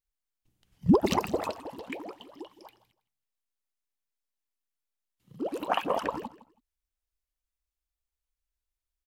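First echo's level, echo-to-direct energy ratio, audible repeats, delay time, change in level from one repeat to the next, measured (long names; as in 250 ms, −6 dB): −17.5 dB, −17.5 dB, 2, 162 ms, −12.5 dB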